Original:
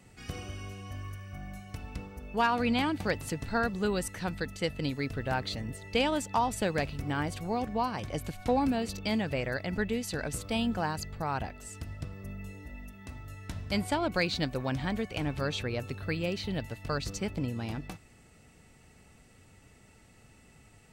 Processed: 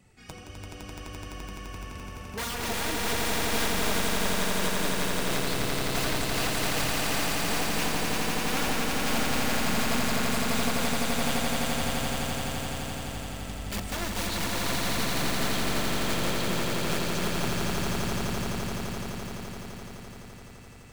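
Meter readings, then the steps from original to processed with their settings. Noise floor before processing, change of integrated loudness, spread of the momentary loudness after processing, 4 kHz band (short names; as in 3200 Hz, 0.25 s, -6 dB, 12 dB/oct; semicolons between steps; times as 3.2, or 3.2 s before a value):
-58 dBFS, +4.0 dB, 14 LU, +8.5 dB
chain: wrapped overs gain 24 dB; flange 1.6 Hz, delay 0.2 ms, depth 6.2 ms, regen +43%; on a send: swelling echo 85 ms, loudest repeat 8, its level -3.5 dB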